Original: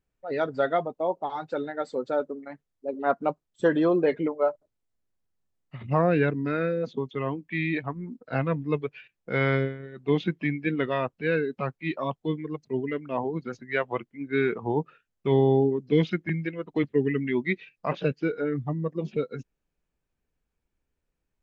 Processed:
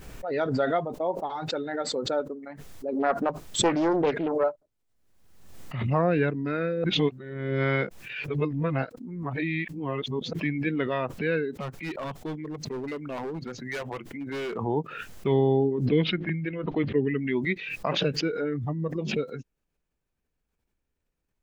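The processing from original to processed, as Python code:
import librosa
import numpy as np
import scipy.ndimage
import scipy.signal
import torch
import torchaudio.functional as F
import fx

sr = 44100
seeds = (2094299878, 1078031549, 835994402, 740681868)

y = fx.doppler_dist(x, sr, depth_ms=0.49, at=(2.95, 4.44))
y = fx.clip_hard(y, sr, threshold_db=-28.5, at=(11.52, 14.57))
y = fx.lowpass(y, sr, hz=3600.0, slope=24, at=(15.85, 17.17), fade=0.02)
y = fx.edit(y, sr, fx.reverse_span(start_s=6.84, length_s=3.49), tone=tone)
y = fx.pre_swell(y, sr, db_per_s=47.0)
y = y * 10.0 ** (-1.5 / 20.0)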